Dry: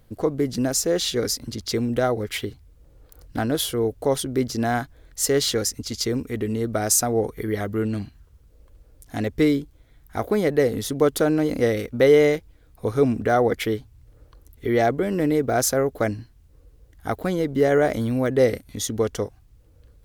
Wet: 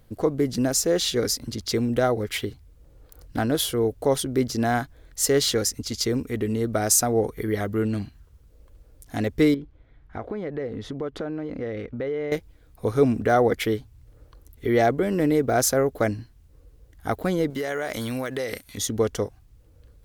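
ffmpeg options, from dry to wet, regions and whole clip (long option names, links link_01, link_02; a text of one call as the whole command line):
ffmpeg -i in.wav -filter_complex "[0:a]asettb=1/sr,asplit=3[link_01][link_02][link_03];[link_01]atrim=end=9.544[link_04];[link_02]atrim=start=9.54:end=12.32,asetpts=PTS-STARTPTS,afade=type=in:duration=0.004:curve=qsin,afade=type=out:start_time=2.776:duration=0.004:curve=qsin,lowpass=2500,acompressor=threshold=-30dB:ratio=3:attack=3.2:release=140:knee=1:detection=peak[link_05];[link_03]atrim=start=12.316[link_06];[link_04][link_05]acrossfade=duration=0.004:curve1=hsin:curve2=qsin[link_07];[link_07][link_06]acrossfade=duration=0.004:curve1=qsin:curve2=hsin,asettb=1/sr,asplit=3[link_08][link_09][link_10];[link_08]atrim=end=17.504[link_11];[link_09]atrim=start=17.5:end=18.78,asetpts=PTS-STARTPTS,afade=type=in:duration=0.004:curve=qsin,afade=type=out:start_time=1.276:duration=0.004:curve=qsin,tiltshelf=frequency=690:gain=-7.5,acompressor=threshold=-24dB:ratio=10:attack=3.2:release=140:knee=1:detection=peak[link_12];[link_10]atrim=start=18.776[link_13];[link_11][link_12]acrossfade=duration=0.004:curve1=hsin:curve2=qsin[link_14];[link_14][link_13]acrossfade=duration=0.004:curve1=qsin:curve2=hsin" out.wav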